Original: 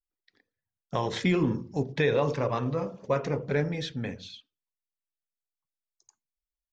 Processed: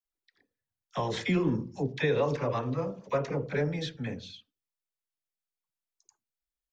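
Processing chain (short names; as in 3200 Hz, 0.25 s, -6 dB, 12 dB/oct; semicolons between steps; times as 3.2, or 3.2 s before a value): dispersion lows, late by 48 ms, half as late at 710 Hz; gain -2 dB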